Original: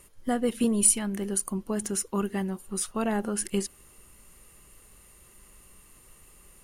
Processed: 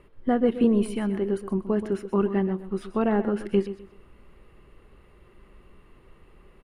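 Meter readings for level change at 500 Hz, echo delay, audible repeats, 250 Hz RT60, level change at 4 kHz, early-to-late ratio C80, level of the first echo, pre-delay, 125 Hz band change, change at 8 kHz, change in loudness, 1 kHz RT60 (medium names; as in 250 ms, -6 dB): +7.0 dB, 127 ms, 2, no reverb, -6.0 dB, no reverb, -12.5 dB, no reverb, +4.5 dB, under -25 dB, +2.0 dB, no reverb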